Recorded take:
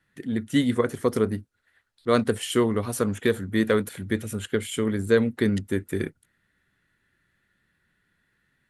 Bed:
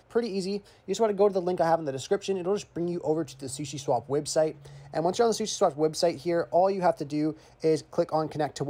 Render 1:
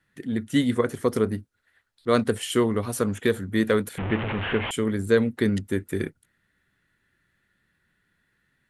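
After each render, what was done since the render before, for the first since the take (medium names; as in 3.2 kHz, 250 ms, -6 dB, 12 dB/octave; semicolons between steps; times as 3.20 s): 3.98–4.71 s: one-bit delta coder 16 kbps, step -22 dBFS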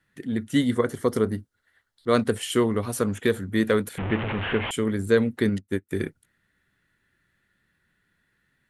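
0.56–2.11 s: band-stop 2.5 kHz, Q 7.3; 5.49–5.91 s: upward expansion 2.5:1, over -38 dBFS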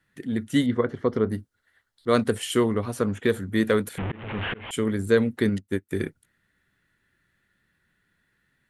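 0.66–1.30 s: distance through air 250 m; 2.74–3.29 s: low-pass 3.6 kHz 6 dB/octave; 4.00–4.73 s: slow attack 316 ms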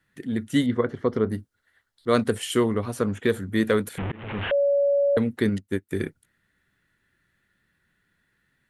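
4.51–5.17 s: bleep 565 Hz -17.5 dBFS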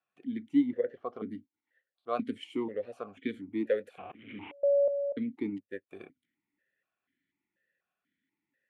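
stepped vowel filter 4.1 Hz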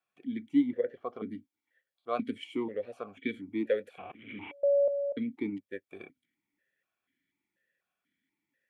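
small resonant body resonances 2.3/3.3 kHz, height 9 dB, ringing for 30 ms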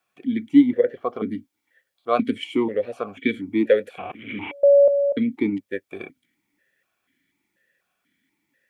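trim +11.5 dB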